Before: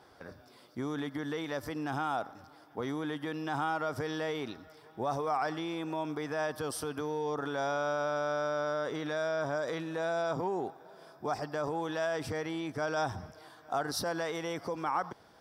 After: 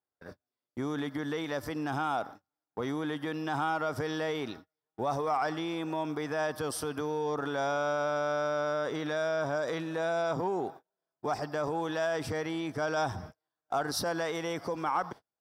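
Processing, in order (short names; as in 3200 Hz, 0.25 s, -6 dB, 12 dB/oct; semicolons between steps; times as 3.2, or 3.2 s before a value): gate -46 dBFS, range -39 dB; in parallel at -11.5 dB: one-sided clip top -30 dBFS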